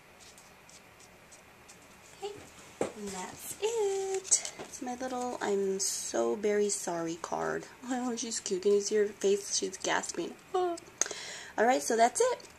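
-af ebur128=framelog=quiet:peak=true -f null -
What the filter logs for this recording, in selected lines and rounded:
Integrated loudness:
  I:         -31.5 LUFS
  Threshold: -42.5 LUFS
Loudness range:
  LRA:         7.6 LU
  Threshold: -52.5 LUFS
  LRA low:   -38.7 LUFS
  LRA high:  -31.1 LUFS
True peak:
  Peak:       -7.5 dBFS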